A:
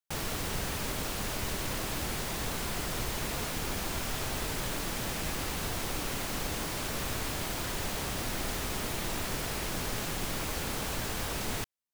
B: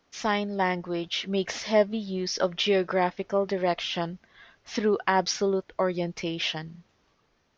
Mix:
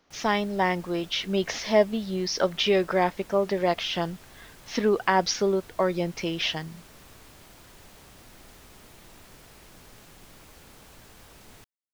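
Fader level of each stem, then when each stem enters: -16.5 dB, +1.5 dB; 0.00 s, 0.00 s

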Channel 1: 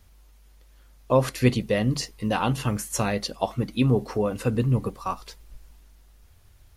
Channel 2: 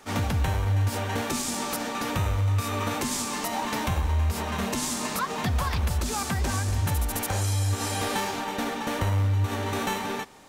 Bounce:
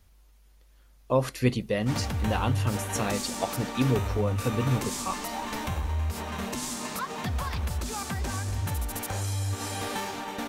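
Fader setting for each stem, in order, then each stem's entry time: -4.0 dB, -4.5 dB; 0.00 s, 1.80 s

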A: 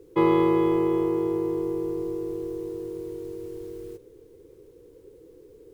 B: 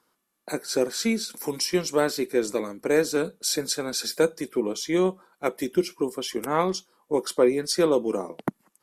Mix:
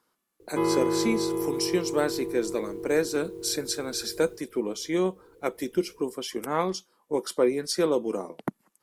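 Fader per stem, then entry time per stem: -5.0 dB, -3.0 dB; 0.40 s, 0.00 s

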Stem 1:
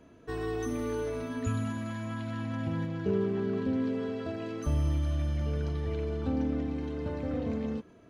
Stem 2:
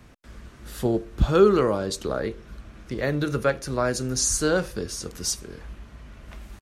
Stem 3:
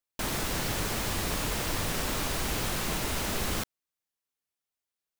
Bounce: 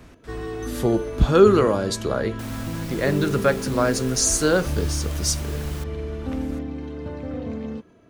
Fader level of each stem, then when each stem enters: +2.0 dB, +3.0 dB, -8.0 dB; 0.00 s, 0.00 s, 2.20 s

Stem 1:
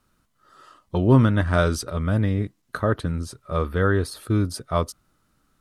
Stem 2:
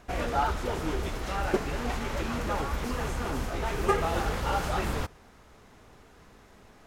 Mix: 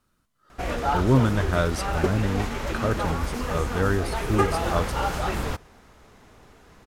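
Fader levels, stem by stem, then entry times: -3.5 dB, +2.5 dB; 0.00 s, 0.50 s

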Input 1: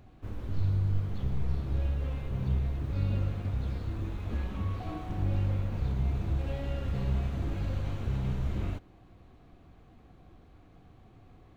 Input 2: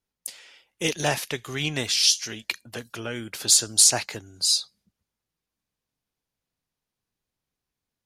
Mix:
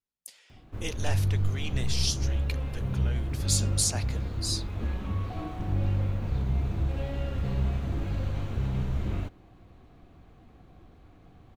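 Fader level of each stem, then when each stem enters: +2.0 dB, -10.5 dB; 0.50 s, 0.00 s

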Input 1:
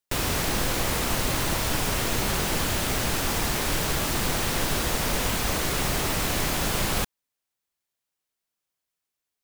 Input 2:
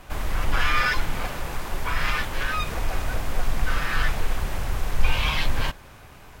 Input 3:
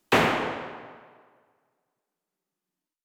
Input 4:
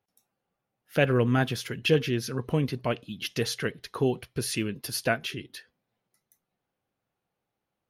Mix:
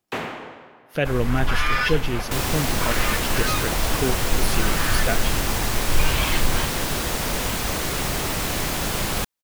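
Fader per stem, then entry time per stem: +1.0 dB, 0.0 dB, -8.5 dB, 0.0 dB; 2.20 s, 0.95 s, 0.00 s, 0.00 s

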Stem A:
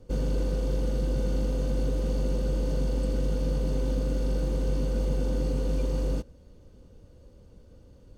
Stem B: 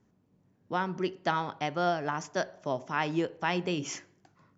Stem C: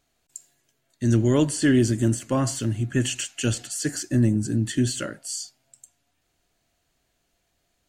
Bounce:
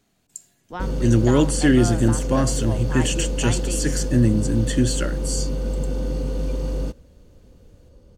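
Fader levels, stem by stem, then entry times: +2.5 dB, -2.5 dB, +2.5 dB; 0.70 s, 0.00 s, 0.00 s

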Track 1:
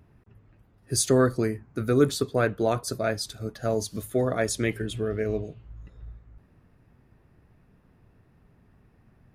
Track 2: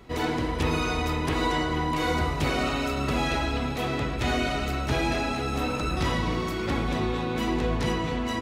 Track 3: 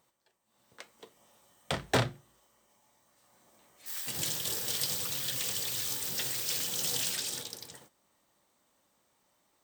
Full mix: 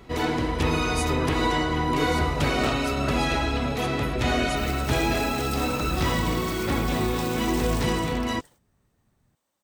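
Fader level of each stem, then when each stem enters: -10.0 dB, +2.0 dB, -6.5 dB; 0.00 s, 0.00 s, 0.70 s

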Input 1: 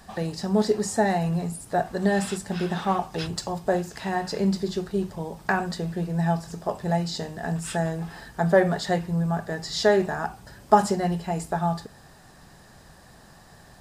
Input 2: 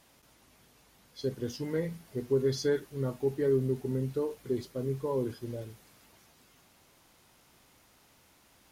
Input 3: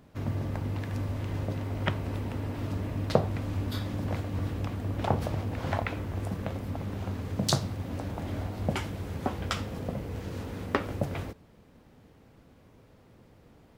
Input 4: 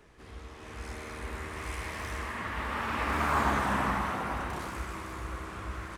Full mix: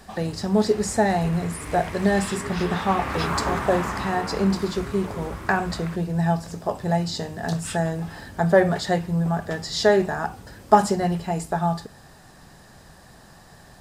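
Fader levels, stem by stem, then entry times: +2.0 dB, -8.5 dB, -11.0 dB, +0.5 dB; 0.00 s, 0.00 s, 0.00 s, 0.00 s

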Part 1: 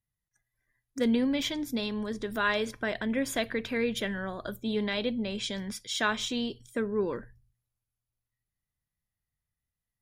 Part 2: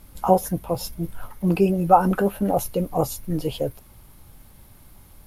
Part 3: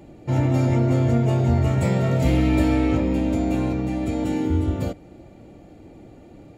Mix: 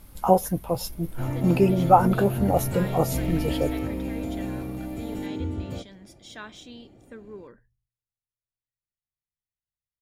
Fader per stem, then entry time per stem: -13.0 dB, -1.0 dB, -9.0 dB; 0.35 s, 0.00 s, 0.90 s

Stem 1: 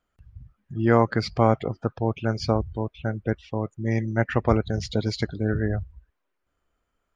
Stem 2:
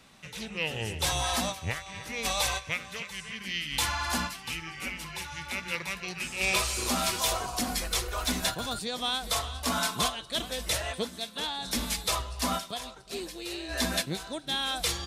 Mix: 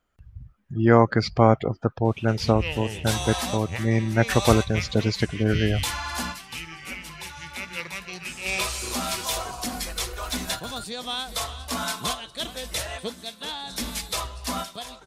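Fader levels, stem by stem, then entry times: +2.5 dB, 0.0 dB; 0.00 s, 2.05 s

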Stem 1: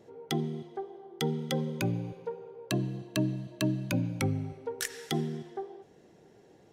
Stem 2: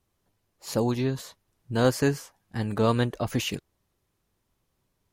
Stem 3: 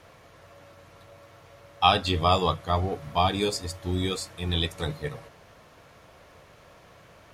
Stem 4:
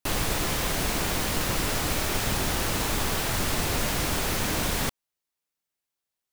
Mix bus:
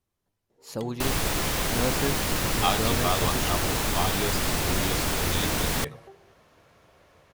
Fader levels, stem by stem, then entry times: -12.5 dB, -6.5 dB, -5.5 dB, +0.5 dB; 0.50 s, 0.00 s, 0.80 s, 0.95 s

